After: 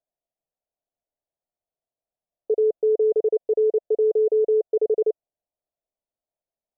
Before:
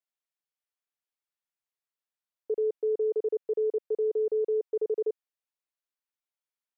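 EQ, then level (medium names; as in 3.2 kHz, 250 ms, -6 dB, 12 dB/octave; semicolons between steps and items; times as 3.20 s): resonant low-pass 660 Hz, resonance Q 4.9; tilt EQ -2.5 dB/octave; 0.0 dB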